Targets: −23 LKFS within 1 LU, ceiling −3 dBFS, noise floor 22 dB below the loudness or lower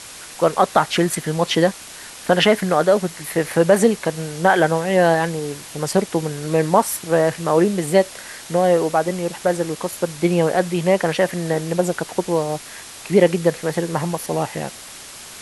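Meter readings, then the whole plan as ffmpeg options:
background noise floor −38 dBFS; target noise floor −42 dBFS; integrated loudness −19.5 LKFS; sample peak −1.5 dBFS; target loudness −23.0 LKFS
→ -af "afftdn=noise_reduction=6:noise_floor=-38"
-af "volume=-3.5dB"

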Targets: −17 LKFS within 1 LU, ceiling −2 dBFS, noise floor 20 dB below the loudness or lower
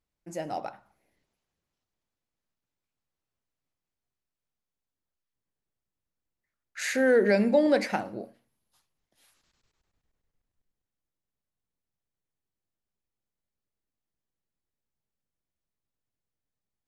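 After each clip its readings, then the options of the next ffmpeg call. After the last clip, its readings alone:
integrated loudness −25.5 LKFS; sample peak −11.5 dBFS; target loudness −17.0 LKFS
→ -af "volume=8.5dB"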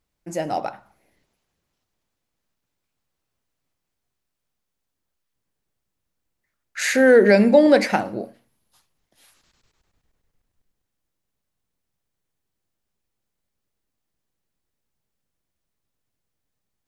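integrated loudness −17.0 LKFS; sample peak −3.0 dBFS; background noise floor −80 dBFS

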